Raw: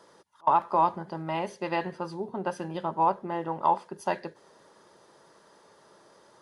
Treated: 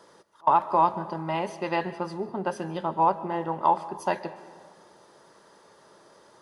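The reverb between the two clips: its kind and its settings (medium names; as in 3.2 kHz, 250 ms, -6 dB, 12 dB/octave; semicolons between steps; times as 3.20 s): algorithmic reverb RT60 1.8 s, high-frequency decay 0.45×, pre-delay 95 ms, DRR 15 dB; trim +2 dB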